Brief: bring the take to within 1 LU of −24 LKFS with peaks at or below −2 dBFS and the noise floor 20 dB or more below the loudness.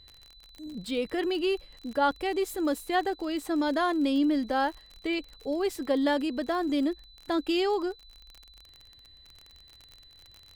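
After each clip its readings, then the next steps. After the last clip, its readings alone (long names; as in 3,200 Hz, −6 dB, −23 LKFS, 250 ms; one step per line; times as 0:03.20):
crackle rate 42 per second; interfering tone 4,000 Hz; level of the tone −53 dBFS; integrated loudness −29.0 LKFS; sample peak −14.0 dBFS; target loudness −24.0 LKFS
→ click removal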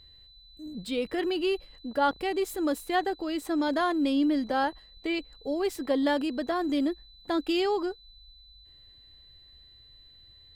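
crackle rate 1.1 per second; interfering tone 4,000 Hz; level of the tone −53 dBFS
→ notch filter 4,000 Hz, Q 30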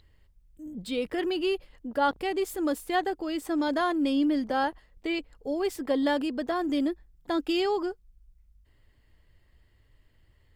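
interfering tone none found; integrated loudness −29.0 LKFS; sample peak −14.0 dBFS; target loudness −24.0 LKFS
→ level +5 dB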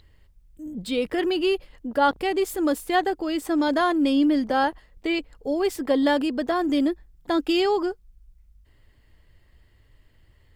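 integrated loudness −24.0 LKFS; sample peak −9.0 dBFS; background noise floor −58 dBFS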